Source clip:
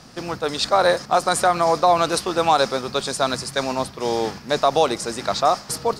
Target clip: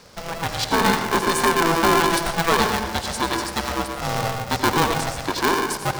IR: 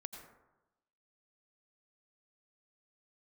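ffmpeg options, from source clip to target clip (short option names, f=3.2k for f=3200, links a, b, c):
-filter_complex "[1:a]atrim=start_sample=2205[a];[0:a][a]afir=irnorm=-1:irlink=0,aeval=exprs='val(0)*sgn(sin(2*PI*330*n/s))':c=same,volume=2dB"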